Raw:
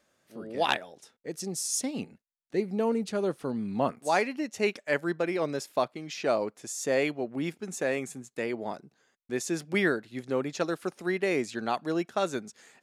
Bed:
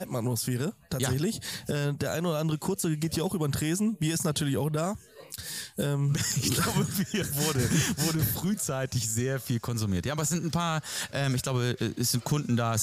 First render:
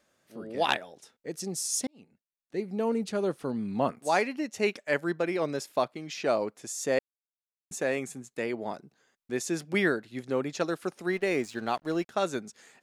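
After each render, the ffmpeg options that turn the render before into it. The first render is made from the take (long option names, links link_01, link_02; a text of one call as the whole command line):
ffmpeg -i in.wav -filter_complex "[0:a]asettb=1/sr,asplit=3[link_01][link_02][link_03];[link_01]atrim=end=11.124[link_04];[link_02]atrim=start=11.12:end=12.1,asetpts=PTS-STARTPTS,afade=type=in:duration=0.004:curve=qsin,afade=type=out:start_time=0.976:duration=0.004:curve=qsin,aeval=exprs='sgn(val(0))*max(abs(val(0))-0.00299,0)':channel_layout=same[link_05];[link_03]atrim=start=12.096[link_06];[link_04][link_05]acrossfade=duration=0.004:curve1=hsin:curve2=qsin[link_07];[link_07][link_06]acrossfade=duration=0.004:curve1=qsin:curve2=hsin,asplit=4[link_08][link_09][link_10][link_11];[link_08]atrim=end=1.87,asetpts=PTS-STARTPTS,afade=type=out:start_time=1.866:duration=0.004:curve=hsin[link_12];[link_09]atrim=start=1.87:end=6.99,asetpts=PTS-STARTPTS,afade=type=in:duration=1.14,afade=type=out:start_time=5.116:duration=0.004:curve=hsin[link_13];[link_10]atrim=start=6.99:end=7.71,asetpts=PTS-STARTPTS,volume=0[link_14];[link_11]atrim=start=7.71,asetpts=PTS-STARTPTS,afade=type=in:duration=0.004:curve=hsin[link_15];[link_12][link_13][link_14][link_15]concat=n=4:v=0:a=1" out.wav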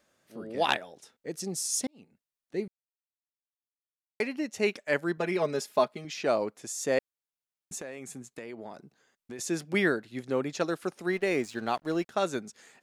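ffmpeg -i in.wav -filter_complex "[0:a]asettb=1/sr,asplit=3[link_01][link_02][link_03];[link_01]atrim=end=5.174[link_04];[link_02]atrim=start=5.17:end=6.05,asetpts=PTS-STARTPTS,afade=type=in:duration=0.004:curve=qsin,afade=type=out:start_time=0.876:duration=0.004:curve=qsin,aecho=1:1:4.8:0.65,atrim=end_sample=38808[link_05];[link_03]atrim=start=6.046[link_06];[link_04][link_05]acrossfade=duration=0.004:curve1=hsin:curve2=qsin[link_07];[link_07][link_06]acrossfade=duration=0.004:curve1=qsin:curve2=hsin,asettb=1/sr,asplit=3[link_08][link_09][link_10];[link_08]atrim=end=7.794[link_11];[link_09]atrim=start=7.79:end=9.39,asetpts=PTS-STARTPTS,afade=type=in:duration=0.004:curve=qsin,afade=type=out:start_time=1.596:duration=0.004:curve=qsin,acompressor=threshold=-37dB:ratio=6:attack=3.2:release=140:knee=1:detection=peak[link_12];[link_10]atrim=start=9.386[link_13];[link_11][link_12]acrossfade=duration=0.004:curve1=hsin:curve2=qsin[link_14];[link_14][link_13]acrossfade=duration=0.004:curve1=qsin:curve2=hsin,asplit=3[link_15][link_16][link_17];[link_15]atrim=end=2.68,asetpts=PTS-STARTPTS,afade=type=out:start_time=2.676:duration=0.004:curve=hsin[link_18];[link_16]atrim=start=2.68:end=4.2,asetpts=PTS-STARTPTS,volume=0[link_19];[link_17]atrim=start=4.2,asetpts=PTS-STARTPTS,afade=type=in:duration=0.004:curve=hsin[link_20];[link_18][link_19][link_20]concat=n=3:v=0:a=1" out.wav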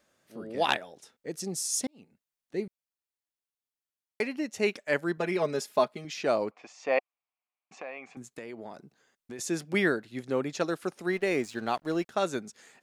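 ffmpeg -i in.wav -filter_complex "[0:a]asettb=1/sr,asplit=3[link_01][link_02][link_03];[link_01]atrim=end=6.514[link_04];[link_02]atrim=start=6.51:end=8.17,asetpts=PTS-STARTPTS,afade=type=in:duration=0.004:curve=qsin,afade=type=out:start_time=1.656:duration=0.004:curve=qsin,highpass=350,equalizer=frequency=380:width_type=q:width=4:gain=-6,equalizer=frequency=740:width_type=q:width=4:gain=9,equalizer=frequency=1100:width_type=q:width=4:gain=9,equalizer=frequency=1600:width_type=q:width=4:gain=-4,equalizer=frequency=2400:width_type=q:width=4:gain=9,equalizer=frequency=3700:width_type=q:width=4:gain=-7,lowpass=frequency=4100:width=0.5412,lowpass=frequency=4100:width=1.3066[link_05];[link_03]atrim=start=8.166[link_06];[link_04][link_05]acrossfade=duration=0.004:curve1=hsin:curve2=qsin[link_07];[link_07][link_06]acrossfade=duration=0.004:curve1=qsin:curve2=hsin" out.wav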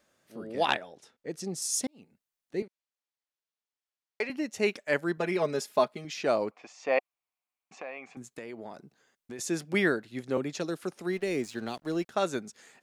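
ffmpeg -i in.wav -filter_complex "[0:a]asettb=1/sr,asplit=3[link_01][link_02][link_03];[link_01]atrim=end=0.654[link_04];[link_02]atrim=start=0.65:end=1.62,asetpts=PTS-STARTPTS,afade=type=in:duration=0.004:curve=qsin,afade=type=out:start_time=0.966:duration=0.004:curve=qsin,highshelf=frequency=7600:gain=-10[link_05];[link_03]atrim=start=1.616[link_06];[link_04][link_05]acrossfade=duration=0.004:curve1=hsin:curve2=qsin[link_07];[link_07][link_06]acrossfade=duration=0.004:curve1=qsin:curve2=hsin,asettb=1/sr,asplit=3[link_08][link_09][link_10];[link_08]atrim=end=2.624[link_11];[link_09]atrim=start=2.62:end=4.3,asetpts=PTS-STARTPTS,afade=type=in:duration=0.004:curve=qsin,afade=type=out:start_time=1.676:duration=0.004:curve=qsin,highpass=370,lowpass=6300[link_12];[link_10]atrim=start=4.296[link_13];[link_11][link_12]acrossfade=duration=0.004:curve1=hsin:curve2=qsin[link_14];[link_14][link_13]acrossfade=duration=0.004:curve1=qsin:curve2=hsin,asettb=1/sr,asplit=3[link_15][link_16][link_17];[link_15]atrim=end=10.374[link_18];[link_16]atrim=start=10.37:end=12.09,asetpts=PTS-STARTPTS,afade=type=in:duration=0.004:curve=qsin,afade=type=out:start_time=1.716:duration=0.004:curve=qsin,acrossover=split=450|3000[link_19][link_20][link_21];[link_20]acompressor=threshold=-38dB:ratio=6:attack=3.2:release=140:knee=2.83:detection=peak[link_22];[link_19][link_22][link_21]amix=inputs=3:normalize=0[link_23];[link_17]atrim=start=12.086[link_24];[link_18][link_23]acrossfade=duration=0.004:curve1=hsin:curve2=qsin[link_25];[link_25][link_24]acrossfade=duration=0.004:curve1=qsin:curve2=hsin" out.wav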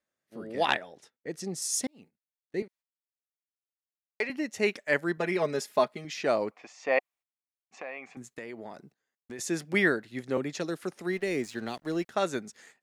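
ffmpeg -i in.wav -af "agate=range=-18dB:threshold=-55dB:ratio=16:detection=peak,equalizer=frequency=1900:width_type=o:width=0.33:gain=5" out.wav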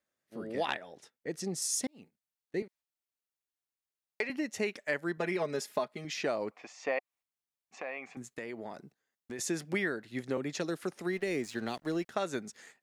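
ffmpeg -i in.wav -af "acompressor=threshold=-29dB:ratio=5" out.wav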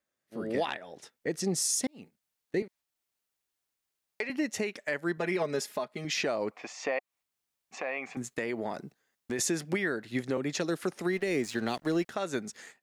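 ffmpeg -i in.wav -af "alimiter=level_in=3.5dB:limit=-24dB:level=0:latency=1:release=447,volume=-3.5dB,dynaudnorm=framelen=280:gausssize=3:maxgain=8dB" out.wav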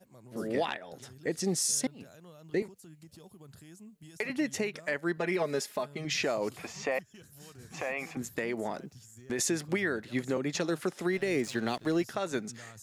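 ffmpeg -i in.wav -i bed.wav -filter_complex "[1:a]volume=-24dB[link_01];[0:a][link_01]amix=inputs=2:normalize=0" out.wav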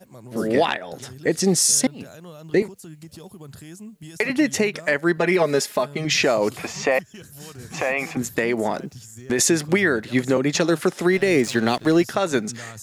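ffmpeg -i in.wav -af "volume=11.5dB" out.wav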